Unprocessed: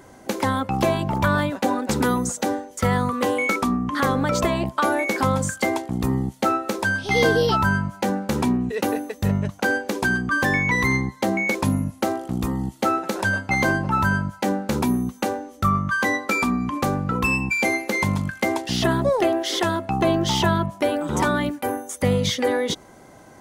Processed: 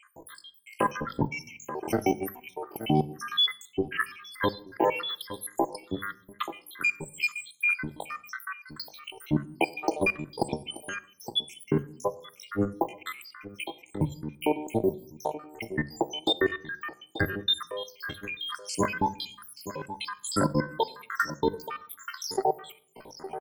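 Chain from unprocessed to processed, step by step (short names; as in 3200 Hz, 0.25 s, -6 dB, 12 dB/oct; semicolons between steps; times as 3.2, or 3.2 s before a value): random spectral dropouts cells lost 84%; outdoor echo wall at 150 m, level -15 dB; in parallel at -1 dB: compressor 5:1, threshold -40 dBFS, peak gain reduction 20 dB; on the sum: high shelf 4000 Hz -3.5 dB; level quantiser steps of 12 dB; on a send at -14.5 dB: high shelf 9200 Hz +11.5 dB + reverb RT60 0.50 s, pre-delay 4 ms; on the sum: pitch shift +7.5 st; gain +2 dB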